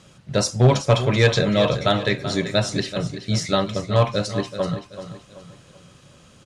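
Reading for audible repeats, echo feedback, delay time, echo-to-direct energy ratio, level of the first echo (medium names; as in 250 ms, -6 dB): 3, 38%, 382 ms, -11.0 dB, -11.5 dB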